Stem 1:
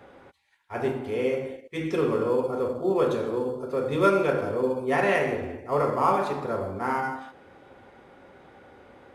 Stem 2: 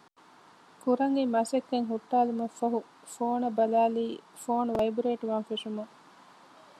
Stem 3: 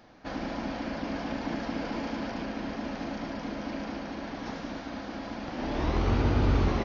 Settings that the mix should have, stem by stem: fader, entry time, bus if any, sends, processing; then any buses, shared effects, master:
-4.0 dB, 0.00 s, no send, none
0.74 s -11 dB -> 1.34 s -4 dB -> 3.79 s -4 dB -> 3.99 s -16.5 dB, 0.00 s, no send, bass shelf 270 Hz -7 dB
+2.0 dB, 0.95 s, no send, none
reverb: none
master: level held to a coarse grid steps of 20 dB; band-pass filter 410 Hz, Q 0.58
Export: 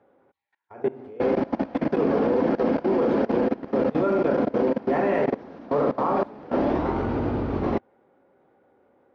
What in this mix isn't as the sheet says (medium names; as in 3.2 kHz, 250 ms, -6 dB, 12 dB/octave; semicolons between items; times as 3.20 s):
stem 1 -4.0 dB -> +4.5 dB; stem 2: muted; stem 3 +2.0 dB -> +13.0 dB